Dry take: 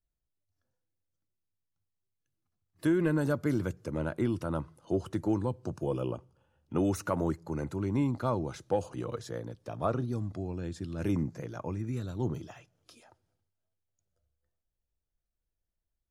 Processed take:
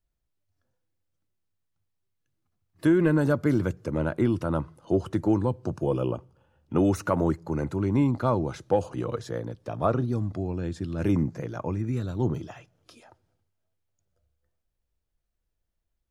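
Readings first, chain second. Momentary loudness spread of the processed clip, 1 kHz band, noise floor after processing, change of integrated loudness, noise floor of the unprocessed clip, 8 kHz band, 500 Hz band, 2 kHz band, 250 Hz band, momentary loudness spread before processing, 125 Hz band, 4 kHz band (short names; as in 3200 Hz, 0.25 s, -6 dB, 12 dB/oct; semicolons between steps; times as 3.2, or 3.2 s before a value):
9 LU, +5.5 dB, -80 dBFS, +6.0 dB, -85 dBFS, +1.0 dB, +6.0 dB, +5.0 dB, +6.0 dB, 9 LU, +6.0 dB, +3.5 dB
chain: high shelf 4400 Hz -6.5 dB; gain +6 dB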